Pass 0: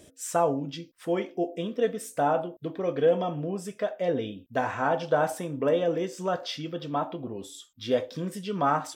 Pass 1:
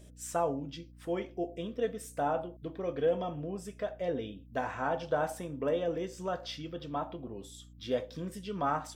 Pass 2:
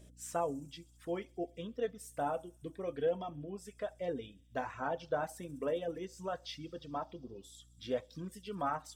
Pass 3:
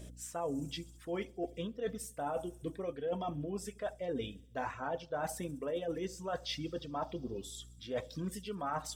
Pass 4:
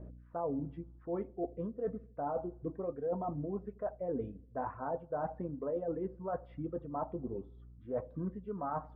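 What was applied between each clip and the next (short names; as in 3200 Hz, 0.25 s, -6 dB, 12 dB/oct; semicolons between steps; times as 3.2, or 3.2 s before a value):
hum 60 Hz, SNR 19 dB; gain -6.5 dB
thin delay 67 ms, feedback 84%, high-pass 5200 Hz, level -8.5 dB; reverb removal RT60 1.2 s; gain -3.5 dB
reverse; compressor 6:1, threshold -43 dBFS, peak gain reduction 14.5 dB; reverse; dark delay 82 ms, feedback 45%, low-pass 460 Hz, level -19.5 dB; gain +8.5 dB
LPF 1200 Hz 24 dB/oct; gain +1 dB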